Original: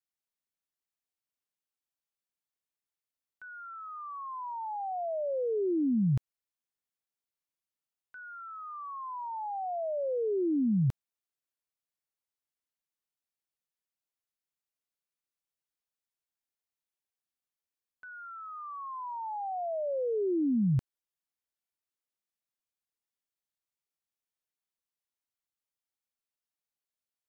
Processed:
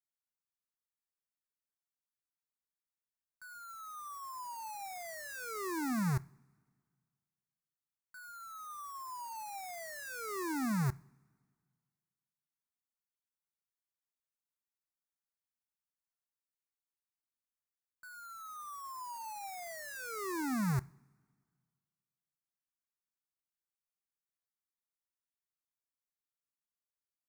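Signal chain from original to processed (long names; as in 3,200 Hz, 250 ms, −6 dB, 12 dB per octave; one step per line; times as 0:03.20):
each half-wave held at its own peak
phaser with its sweep stopped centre 1,300 Hz, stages 4
coupled-rooms reverb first 0.46 s, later 1.9 s, from −17 dB, DRR 18.5 dB
level −7 dB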